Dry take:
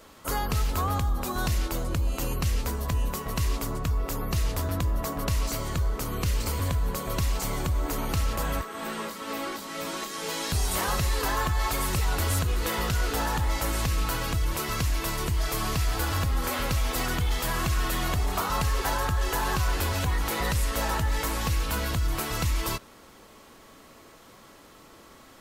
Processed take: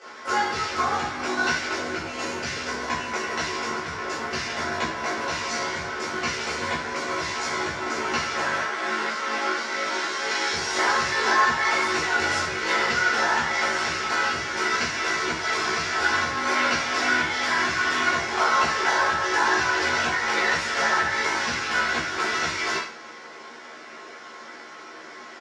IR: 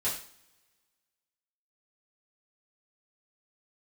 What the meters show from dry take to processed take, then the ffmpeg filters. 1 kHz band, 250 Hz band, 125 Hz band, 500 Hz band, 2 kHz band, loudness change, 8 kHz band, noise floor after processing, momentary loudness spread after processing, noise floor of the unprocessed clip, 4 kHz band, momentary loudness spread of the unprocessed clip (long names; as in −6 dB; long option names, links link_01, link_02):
+7.5 dB, +0.5 dB, −14.5 dB, +4.0 dB, +12.5 dB, +4.5 dB, +1.0 dB, −42 dBFS, 9 LU, −52 dBFS, +6.0 dB, 4 LU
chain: -filter_complex "[0:a]asplit=2[link_01][link_02];[link_02]aeval=exprs='(mod(44.7*val(0)+1,2)-1)/44.7':channel_layout=same,volume=-6dB[link_03];[link_01][link_03]amix=inputs=2:normalize=0,tremolo=f=51:d=0.919,highpass=320,equalizer=frequency=340:width_type=q:width=4:gain=4,equalizer=frequency=810:width_type=q:width=4:gain=3,equalizer=frequency=1500:width_type=q:width=4:gain=10,equalizer=frequency=2100:width_type=q:width=4:gain=8,equalizer=frequency=5500:width_type=q:width=4:gain=6,lowpass=frequency=6200:width=0.5412,lowpass=frequency=6200:width=1.3066,asplit=2[link_04][link_05];[link_05]adelay=13,volume=-2.5dB[link_06];[link_04][link_06]amix=inputs=2:normalize=0[link_07];[1:a]atrim=start_sample=2205[link_08];[link_07][link_08]afir=irnorm=-1:irlink=0"